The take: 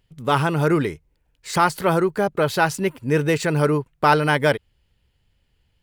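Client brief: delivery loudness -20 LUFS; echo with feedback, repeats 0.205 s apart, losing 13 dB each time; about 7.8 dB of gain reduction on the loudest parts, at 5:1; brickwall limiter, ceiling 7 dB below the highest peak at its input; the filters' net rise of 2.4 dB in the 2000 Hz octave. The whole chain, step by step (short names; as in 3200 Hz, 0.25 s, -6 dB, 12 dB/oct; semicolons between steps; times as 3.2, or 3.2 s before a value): bell 2000 Hz +3.5 dB; compressor 5:1, threshold -20 dBFS; limiter -15.5 dBFS; feedback echo 0.205 s, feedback 22%, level -13 dB; gain +6.5 dB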